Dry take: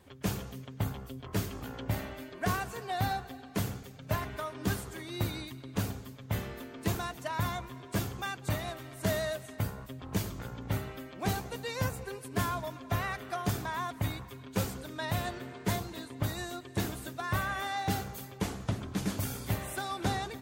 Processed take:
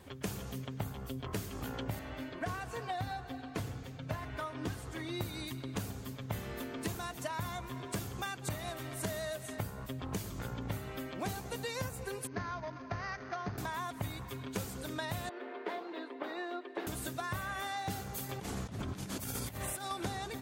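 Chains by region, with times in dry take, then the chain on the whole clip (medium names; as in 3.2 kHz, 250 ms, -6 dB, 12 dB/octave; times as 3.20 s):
1.99–5.21 s: treble shelf 7.2 kHz -12 dB + comb of notches 200 Hz
12.27–13.58 s: median filter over 15 samples + rippled Chebyshev low-pass 6.5 kHz, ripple 6 dB
15.29–16.87 s: steep high-pass 300 Hz + distance through air 380 m
18.29–19.91 s: hum notches 50/100/150/200/250/300/350/400/450/500 Hz + compressor with a negative ratio -42 dBFS
whole clip: dynamic bell 9.7 kHz, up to +4 dB, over -56 dBFS, Q 0.74; compression 6:1, threshold -40 dBFS; trim +4.5 dB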